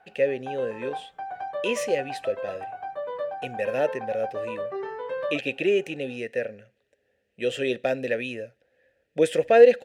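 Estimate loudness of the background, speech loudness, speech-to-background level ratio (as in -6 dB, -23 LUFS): -34.0 LUFS, -26.5 LUFS, 7.5 dB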